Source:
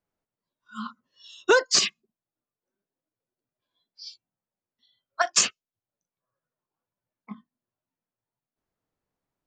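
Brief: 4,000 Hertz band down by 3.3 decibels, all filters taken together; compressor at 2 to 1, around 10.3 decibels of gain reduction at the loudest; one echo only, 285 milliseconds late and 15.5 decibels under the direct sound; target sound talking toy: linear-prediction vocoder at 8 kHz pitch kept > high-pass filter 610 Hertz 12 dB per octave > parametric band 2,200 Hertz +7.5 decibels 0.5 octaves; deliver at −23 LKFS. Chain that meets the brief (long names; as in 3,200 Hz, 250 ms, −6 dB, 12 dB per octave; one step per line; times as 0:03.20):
parametric band 4,000 Hz −5.5 dB
downward compressor 2 to 1, threshold −33 dBFS
single-tap delay 285 ms −15.5 dB
linear-prediction vocoder at 8 kHz pitch kept
high-pass filter 610 Hz 12 dB per octave
parametric band 2,200 Hz +7.5 dB 0.5 octaves
level +14.5 dB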